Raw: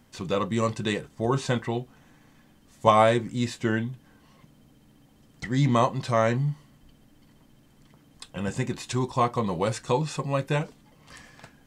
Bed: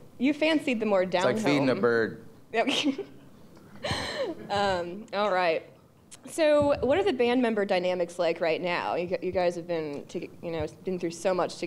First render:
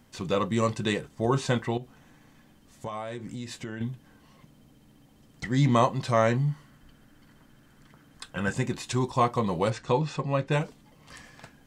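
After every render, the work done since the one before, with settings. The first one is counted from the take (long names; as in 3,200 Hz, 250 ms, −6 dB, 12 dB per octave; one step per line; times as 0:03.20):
0:01.77–0:03.81: downward compressor, threshold −33 dBFS
0:06.50–0:08.53: parametric band 1,500 Hz +9.5 dB 0.64 octaves
0:09.70–0:10.52: high-frequency loss of the air 100 metres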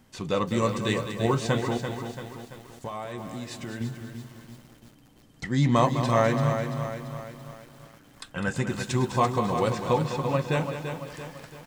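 repeating echo 204 ms, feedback 26%, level −10 dB
feedback echo at a low word length 338 ms, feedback 55%, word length 8 bits, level −7.5 dB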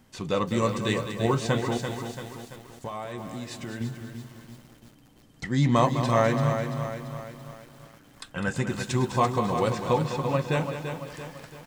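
0:01.72–0:02.56: parametric band 8,300 Hz +5 dB 2.1 octaves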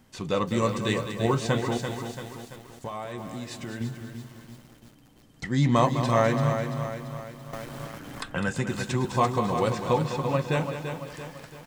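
0:07.53–0:09.05: multiband upward and downward compressor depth 70%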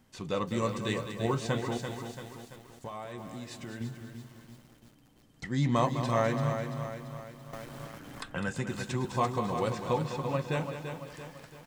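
level −5.5 dB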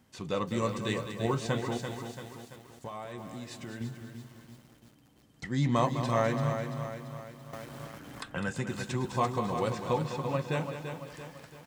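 high-pass filter 43 Hz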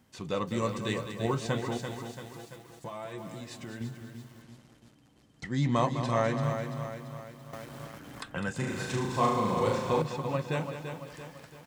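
0:02.33–0:03.41: comb filter 6 ms
0:04.42–0:06.43: low-pass filter 10,000 Hz
0:08.56–0:10.02: flutter between parallel walls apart 6.4 metres, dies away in 0.77 s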